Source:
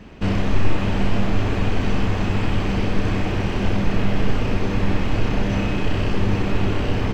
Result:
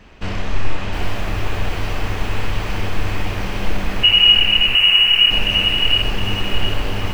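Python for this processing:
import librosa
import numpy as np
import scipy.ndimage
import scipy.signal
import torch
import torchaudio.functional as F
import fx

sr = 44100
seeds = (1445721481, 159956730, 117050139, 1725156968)

y = fx.freq_invert(x, sr, carrier_hz=2900, at=(4.03, 5.31))
y = fx.peak_eq(y, sr, hz=200.0, db=-10.0, octaves=2.7)
y = fx.echo_crushed(y, sr, ms=717, feedback_pct=35, bits=7, wet_db=-3.5)
y = y * 10.0 ** (1.5 / 20.0)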